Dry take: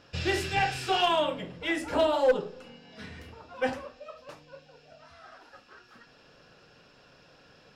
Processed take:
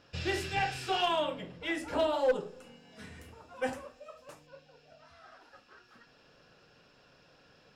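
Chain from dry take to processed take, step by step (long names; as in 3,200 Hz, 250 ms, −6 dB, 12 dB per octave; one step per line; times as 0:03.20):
0:02.34–0:04.47: high shelf with overshoot 6,200 Hz +8 dB, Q 1.5
level −4.5 dB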